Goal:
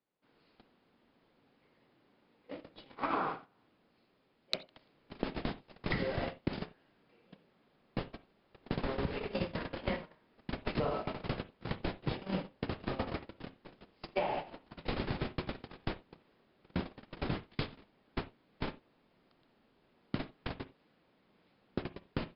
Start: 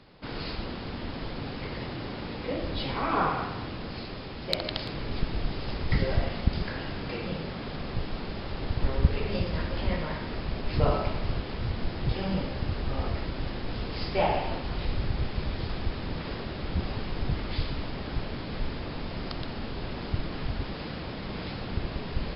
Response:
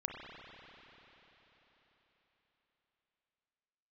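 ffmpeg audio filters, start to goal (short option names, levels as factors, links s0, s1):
-filter_complex "[0:a]agate=range=0.00891:threshold=0.0501:ratio=16:detection=peak,acrossover=split=160 4500:gain=0.158 1 0.2[s0][s1][s2];[s0][s1][s2]amix=inputs=3:normalize=0,acompressor=threshold=0.01:ratio=12,asplit=2[s3][s4];[1:a]atrim=start_sample=2205,afade=t=out:st=0.14:d=0.01,atrim=end_sample=6615[s5];[s4][s5]afir=irnorm=-1:irlink=0,volume=0.75[s6];[s3][s6]amix=inputs=2:normalize=0,volume=1.78"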